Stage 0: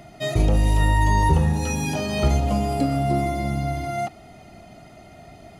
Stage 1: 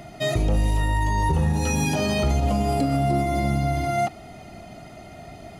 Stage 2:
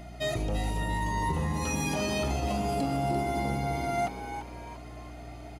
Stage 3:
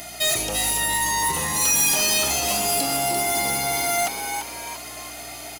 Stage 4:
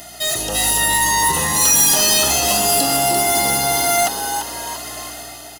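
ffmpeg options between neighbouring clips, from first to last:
-af "alimiter=limit=0.141:level=0:latency=1:release=80,volume=1.5"
-filter_complex "[0:a]lowshelf=f=220:g=-5.5,aeval=exprs='val(0)+0.0126*(sin(2*PI*60*n/s)+sin(2*PI*2*60*n/s)/2+sin(2*PI*3*60*n/s)/3+sin(2*PI*4*60*n/s)/4+sin(2*PI*5*60*n/s)/5)':c=same,asplit=2[s0][s1];[s1]asplit=4[s2][s3][s4][s5];[s2]adelay=342,afreqshift=120,volume=0.335[s6];[s3]adelay=684,afreqshift=240,volume=0.124[s7];[s4]adelay=1026,afreqshift=360,volume=0.0457[s8];[s5]adelay=1368,afreqshift=480,volume=0.017[s9];[s6][s7][s8][s9]amix=inputs=4:normalize=0[s10];[s0][s10]amix=inputs=2:normalize=0,volume=0.531"
-filter_complex "[0:a]crystalizer=i=5:c=0,asplit=2[s0][s1];[s1]highpass=f=720:p=1,volume=7.08,asoftclip=type=tanh:threshold=0.266[s2];[s0][s2]amix=inputs=2:normalize=0,lowpass=f=2200:p=1,volume=0.501,aemphasis=mode=production:type=75fm,volume=0.794"
-af "dynaudnorm=f=110:g=9:m=2.11,asuperstop=centerf=2300:order=12:qfactor=5.5"

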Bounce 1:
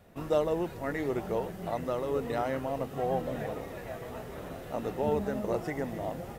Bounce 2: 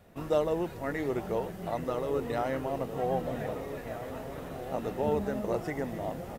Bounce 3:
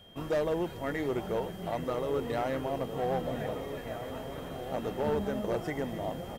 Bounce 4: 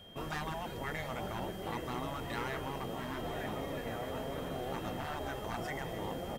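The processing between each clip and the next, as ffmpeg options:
-filter_complex "[0:a]asplit=2[s0][s1];[s1]adelay=1574,volume=0.316,highshelf=f=4000:g=-35.4[s2];[s0][s2]amix=inputs=2:normalize=0"
-af "volume=16.8,asoftclip=hard,volume=0.0596,aeval=exprs='val(0)+0.00178*sin(2*PI*3200*n/s)':c=same"
-af "bandreject=f=60:t=h:w=6,bandreject=f=120:t=h:w=6,afftfilt=real='re*lt(hypot(re,im),0.0891)':imag='im*lt(hypot(re,im),0.0891)':win_size=1024:overlap=0.75,volume=1.12"

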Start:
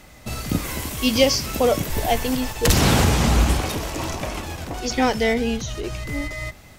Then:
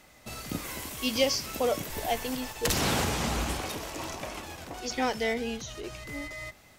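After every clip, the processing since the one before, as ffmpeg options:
-af "lowshelf=f=190:g=-9.5,volume=0.422"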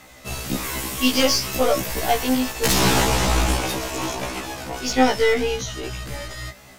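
-af "aeval=exprs='0.266*(cos(1*acos(clip(val(0)/0.266,-1,1)))-cos(1*PI/2))+0.0168*(cos(8*acos(clip(val(0)/0.266,-1,1)))-cos(8*PI/2))':c=same,aeval=exprs='0.299*sin(PI/2*2*val(0)/0.299)':c=same,afftfilt=real='re*1.73*eq(mod(b,3),0)':imag='im*1.73*eq(mod(b,3),0)':win_size=2048:overlap=0.75,volume=1.33"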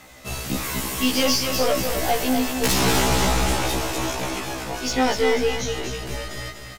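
-filter_complex "[0:a]asoftclip=type=tanh:threshold=0.211,asplit=2[s0][s1];[s1]aecho=0:1:245|490|735|980|1225:0.447|0.201|0.0905|0.0407|0.0183[s2];[s0][s2]amix=inputs=2:normalize=0"

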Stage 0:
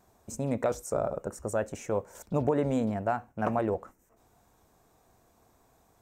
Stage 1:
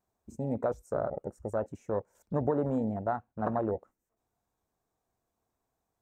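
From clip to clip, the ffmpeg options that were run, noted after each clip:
-af "afwtdn=0.0224,volume=0.794"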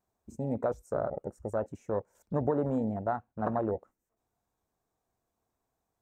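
-af anull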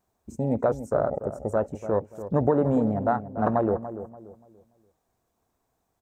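-filter_complex "[0:a]asplit=2[s0][s1];[s1]adelay=289,lowpass=f=1000:p=1,volume=0.282,asplit=2[s2][s3];[s3]adelay=289,lowpass=f=1000:p=1,volume=0.35,asplit=2[s4][s5];[s5]adelay=289,lowpass=f=1000:p=1,volume=0.35,asplit=2[s6][s7];[s7]adelay=289,lowpass=f=1000:p=1,volume=0.35[s8];[s0][s2][s4][s6][s8]amix=inputs=5:normalize=0,volume=2.24"

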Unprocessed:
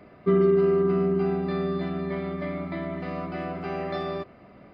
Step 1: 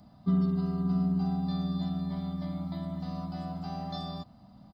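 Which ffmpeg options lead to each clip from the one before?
-af "firequalizer=gain_entry='entry(230,0);entry(390,-24);entry(800,-2);entry(1200,-12);entry(2300,-23);entry(3500,0);entry(5200,6)':delay=0.05:min_phase=1"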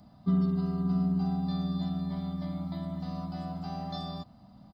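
-af anull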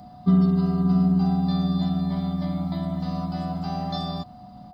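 -af "aeval=exprs='val(0)+0.00224*sin(2*PI*730*n/s)':c=same,volume=2.51"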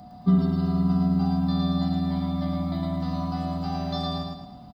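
-af "aecho=1:1:110|220|330|440|550:0.708|0.29|0.119|0.0488|0.02,volume=0.891"

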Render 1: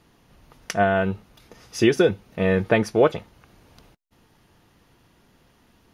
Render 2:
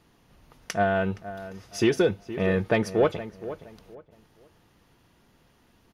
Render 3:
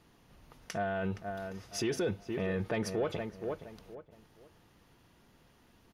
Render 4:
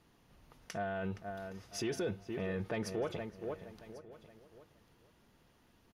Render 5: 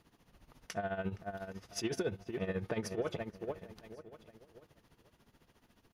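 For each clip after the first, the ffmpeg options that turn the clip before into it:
-filter_complex "[0:a]asoftclip=type=tanh:threshold=0.422,asplit=2[s0][s1];[s1]adelay=469,lowpass=f=1900:p=1,volume=0.211,asplit=2[s2][s3];[s3]adelay=469,lowpass=f=1900:p=1,volume=0.28,asplit=2[s4][s5];[s5]adelay=469,lowpass=f=1900:p=1,volume=0.28[s6];[s0][s2][s4][s6]amix=inputs=4:normalize=0,volume=0.708"
-af "alimiter=limit=0.075:level=0:latency=1:release=50,volume=0.794"
-af "aecho=1:1:1095:0.119,volume=0.631"
-af "tremolo=f=14:d=0.75,volume=1.5"

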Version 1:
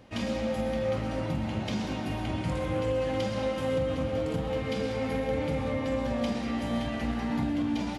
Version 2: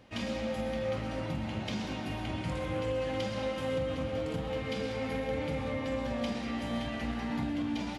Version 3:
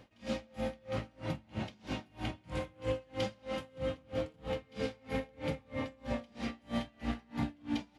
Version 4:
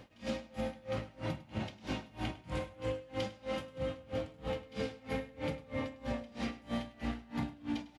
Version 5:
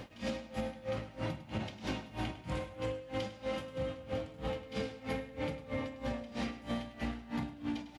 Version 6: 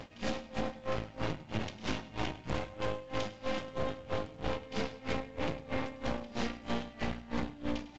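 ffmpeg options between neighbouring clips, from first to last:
-af "equalizer=f=2800:t=o:w=2.3:g=3.5,volume=0.596"
-af "aeval=exprs='val(0)*pow(10,-31*(0.5-0.5*cos(2*PI*3.1*n/s))/20)':c=same,volume=1.19"
-af "acompressor=threshold=0.0158:ratio=6,aecho=1:1:102:0.133,volume=1.5"
-af "acompressor=threshold=0.00794:ratio=6,volume=2.51"
-af "aeval=exprs='0.0708*(cos(1*acos(clip(val(0)/0.0708,-1,1)))-cos(1*PI/2))+0.0178*(cos(6*acos(clip(val(0)/0.0708,-1,1)))-cos(6*PI/2))':c=same" -ar 16000 -c:a pcm_mulaw

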